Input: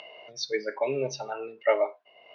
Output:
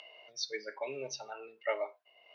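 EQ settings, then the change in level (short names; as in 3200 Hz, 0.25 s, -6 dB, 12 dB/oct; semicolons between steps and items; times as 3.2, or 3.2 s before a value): tilt +2.5 dB/oct; -9.0 dB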